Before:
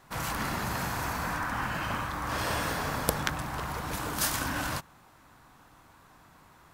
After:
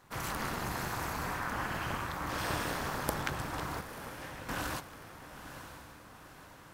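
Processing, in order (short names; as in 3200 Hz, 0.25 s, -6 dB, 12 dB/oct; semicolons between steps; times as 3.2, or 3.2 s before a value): 3.81–4.49 vowel filter e; AM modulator 230 Hz, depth 85%; soft clip -17 dBFS, distortion -18 dB; diffused feedback echo 0.956 s, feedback 53%, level -10.5 dB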